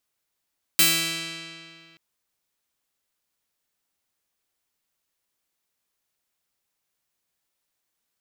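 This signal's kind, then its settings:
Karplus-Strong string E3, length 1.18 s, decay 2.31 s, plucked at 0.39, bright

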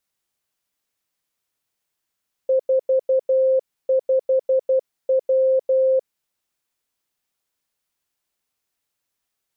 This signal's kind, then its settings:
Morse code "45W" 12 words per minute 525 Hz −14 dBFS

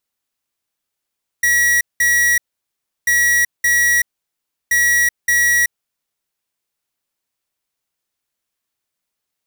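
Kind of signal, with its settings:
beeps in groups square 1,920 Hz, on 0.38 s, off 0.19 s, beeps 2, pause 0.69 s, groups 3, −14 dBFS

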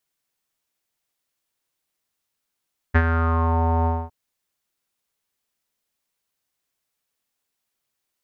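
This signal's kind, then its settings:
subtractive voice square E2 12 dB per octave, low-pass 880 Hz, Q 5.5, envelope 1 octave, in 0.66 s, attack 18 ms, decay 0.06 s, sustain −7 dB, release 0.24 s, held 0.92 s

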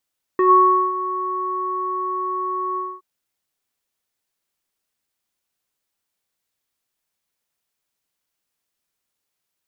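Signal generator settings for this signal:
subtractive voice square F#4 24 dB per octave, low-pass 1,100 Hz, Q 7.6, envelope 0.5 octaves, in 0.12 s, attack 2.5 ms, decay 0.53 s, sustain −15 dB, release 0.24 s, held 2.38 s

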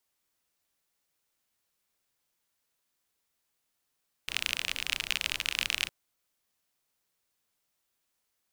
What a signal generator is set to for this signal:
rain-like ticks over hiss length 1.61 s, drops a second 37, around 2,700 Hz, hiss −16 dB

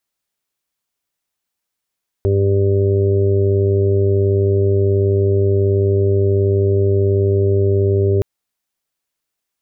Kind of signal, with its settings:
steady harmonic partials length 5.97 s, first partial 98.6 Hz, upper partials −16/−14.5/−1.5/−15/−15 dB, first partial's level −14 dB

